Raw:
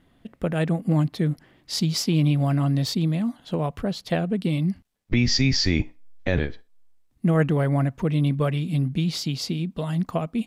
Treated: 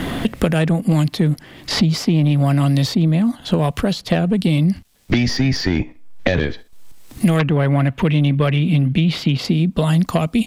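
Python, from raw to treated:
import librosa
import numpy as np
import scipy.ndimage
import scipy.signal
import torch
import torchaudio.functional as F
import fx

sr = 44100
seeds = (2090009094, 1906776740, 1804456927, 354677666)

p1 = fx.level_steps(x, sr, step_db=17)
p2 = x + (p1 * librosa.db_to_amplitude(0.5))
p3 = fx.high_shelf_res(p2, sr, hz=4100.0, db=-10.5, q=1.5, at=(7.39, 9.45))
p4 = fx.fold_sine(p3, sr, drive_db=7, ceiling_db=-3.0)
p5 = fx.band_squash(p4, sr, depth_pct=100)
y = p5 * librosa.db_to_amplitude(-6.0)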